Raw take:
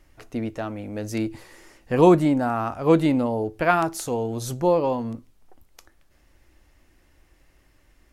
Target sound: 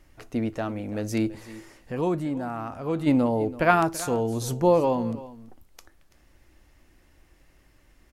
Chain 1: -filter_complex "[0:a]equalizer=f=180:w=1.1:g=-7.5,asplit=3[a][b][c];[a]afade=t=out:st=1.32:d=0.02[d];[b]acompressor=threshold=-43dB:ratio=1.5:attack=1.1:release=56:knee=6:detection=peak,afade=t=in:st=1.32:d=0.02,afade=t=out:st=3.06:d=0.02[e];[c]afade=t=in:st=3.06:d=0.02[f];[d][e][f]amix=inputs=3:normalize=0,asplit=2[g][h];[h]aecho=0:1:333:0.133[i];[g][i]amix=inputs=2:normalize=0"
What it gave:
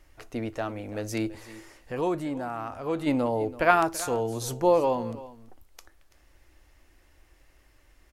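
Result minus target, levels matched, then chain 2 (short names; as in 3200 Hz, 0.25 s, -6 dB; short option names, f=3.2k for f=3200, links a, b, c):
250 Hz band -3.0 dB
-filter_complex "[0:a]equalizer=f=180:w=1.1:g=2,asplit=3[a][b][c];[a]afade=t=out:st=1.32:d=0.02[d];[b]acompressor=threshold=-43dB:ratio=1.5:attack=1.1:release=56:knee=6:detection=peak,afade=t=in:st=1.32:d=0.02,afade=t=out:st=3.06:d=0.02[e];[c]afade=t=in:st=3.06:d=0.02[f];[d][e][f]amix=inputs=3:normalize=0,asplit=2[g][h];[h]aecho=0:1:333:0.133[i];[g][i]amix=inputs=2:normalize=0"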